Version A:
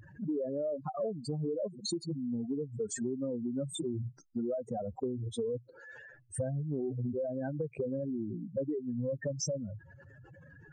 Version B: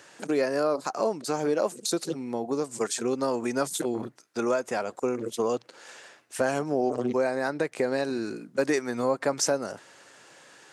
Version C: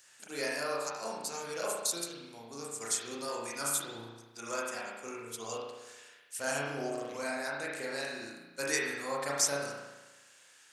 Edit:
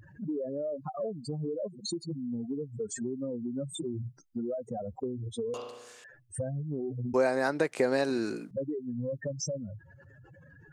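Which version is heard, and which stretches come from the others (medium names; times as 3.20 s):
A
5.54–6.04 s: from C
7.14–8.51 s: from B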